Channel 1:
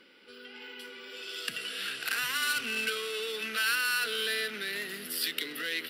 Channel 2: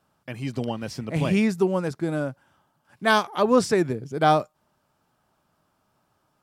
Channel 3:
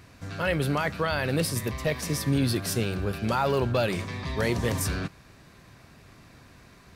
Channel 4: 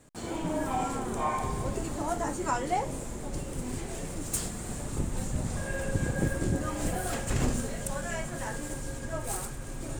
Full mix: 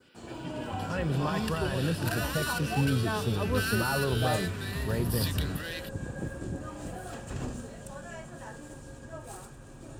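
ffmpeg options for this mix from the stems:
-filter_complex "[0:a]volume=-2dB[a];[1:a]volume=-13.5dB[b];[2:a]bass=f=250:g=7,treble=f=4k:g=-9,adelay=500,volume=-7dB[c];[3:a]highshelf=f=6.6k:g=-9.5,volume=-7dB[d];[a][b][c][d]amix=inputs=4:normalize=0,highpass=45,bandreject=f=2.1k:w=6.4,adynamicequalizer=threshold=0.00398:dfrequency=2900:dqfactor=1.4:tfrequency=2900:tqfactor=1.4:attack=5:release=100:ratio=0.375:range=2.5:mode=cutabove:tftype=bell"

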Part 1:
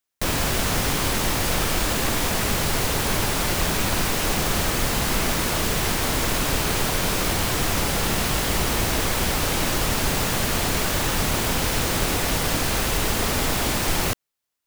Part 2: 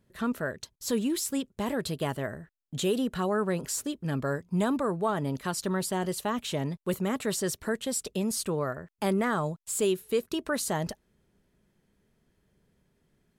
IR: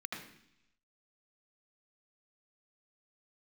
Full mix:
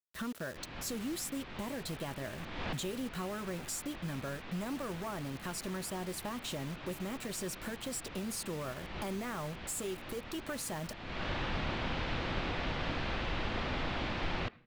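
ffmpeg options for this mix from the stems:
-filter_complex "[0:a]lowpass=f=3.7k:w=0.5412,lowpass=f=3.7k:w=1.3066,adelay=350,volume=-11.5dB,asplit=2[a][b];[b]volume=-20.5dB[c];[1:a]acompressor=threshold=-36dB:ratio=4,asoftclip=type=hard:threshold=-33.5dB,acrusher=bits=7:mix=0:aa=0.000001,volume=-0.5dB,asplit=2[d][e];[e]apad=whole_len=662318[f];[a][f]sidechaincompress=threshold=-55dB:ratio=4:attack=5.8:release=268[g];[2:a]atrim=start_sample=2205[h];[c][h]afir=irnorm=-1:irlink=0[i];[g][d][i]amix=inputs=3:normalize=0,bandreject=f=430:w=12"

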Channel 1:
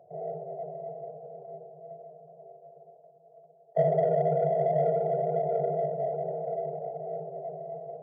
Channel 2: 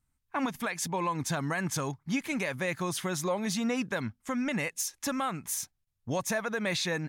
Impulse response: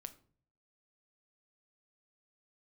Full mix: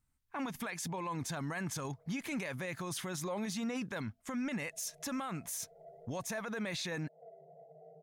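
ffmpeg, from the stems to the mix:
-filter_complex "[0:a]acompressor=threshold=-33dB:ratio=6,flanger=delay=1:depth=5.6:regen=47:speed=0.35:shape=sinusoidal,agate=range=-33dB:threshold=-51dB:ratio=3:detection=peak,adelay=750,volume=-16dB,asplit=2[a][b];[b]volume=-12dB[c];[1:a]volume=-2dB,asplit=2[d][e];[e]apad=whole_len=387161[f];[a][f]sidechaincompress=threshold=-49dB:ratio=8:attack=28:release=174[g];[2:a]atrim=start_sample=2205[h];[c][h]afir=irnorm=-1:irlink=0[i];[g][d][i]amix=inputs=3:normalize=0,alimiter=level_in=6.5dB:limit=-24dB:level=0:latency=1:release=15,volume=-6.5dB"

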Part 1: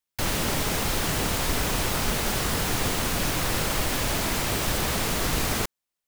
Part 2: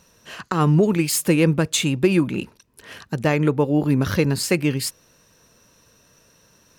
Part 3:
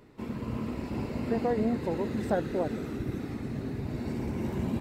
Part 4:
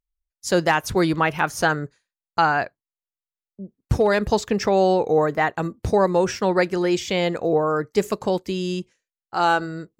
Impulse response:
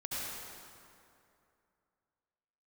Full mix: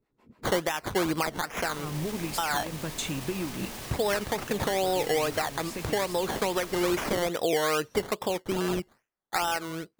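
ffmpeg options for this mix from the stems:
-filter_complex "[0:a]acrossover=split=130[a][b];[a]acompressor=threshold=-33dB:ratio=6[c];[c][b]amix=inputs=2:normalize=0,bandreject=f=1.4k:w=12,alimiter=limit=-22dB:level=0:latency=1:release=23,adelay=1450,volume=-8.5dB[d];[1:a]acompressor=threshold=-28dB:ratio=6,adelay=1250,volume=-2.5dB[e];[2:a]acrossover=split=470[f][g];[f]aeval=exprs='val(0)*(1-1/2+1/2*cos(2*PI*6.9*n/s))':c=same[h];[g]aeval=exprs='val(0)*(1-1/2-1/2*cos(2*PI*6.9*n/s))':c=same[i];[h][i]amix=inputs=2:normalize=0,volume=-16.5dB[j];[3:a]lowshelf=f=300:g=-11.5,acompressor=threshold=-23dB:ratio=6,acrusher=samples=14:mix=1:aa=0.000001:lfo=1:lforange=8.4:lforate=2.4,volume=3dB,asplit=2[k][l];[l]apad=whole_len=354393[m];[e][m]sidechaincompress=threshold=-27dB:ratio=8:attack=5.3:release=340[n];[d][n][j][k]amix=inputs=4:normalize=0,alimiter=limit=-17dB:level=0:latency=1:release=351"

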